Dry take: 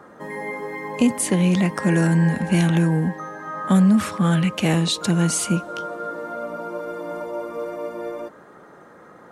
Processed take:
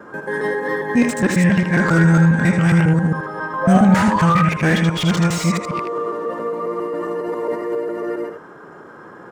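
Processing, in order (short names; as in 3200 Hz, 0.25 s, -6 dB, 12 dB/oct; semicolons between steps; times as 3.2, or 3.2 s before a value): local time reversal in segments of 0.136 s; graphic EQ 125/500/2000 Hz +4/+6/+12 dB; in parallel at -10 dB: soft clip -18 dBFS, distortion -8 dB; on the sum: painted sound rise, 3.63–4.44, 640–1600 Hz -17 dBFS; formant shift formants -3 st; on a send: echo 79 ms -7.5 dB; on the sum: slew limiter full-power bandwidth 330 Hz; gain -1.5 dB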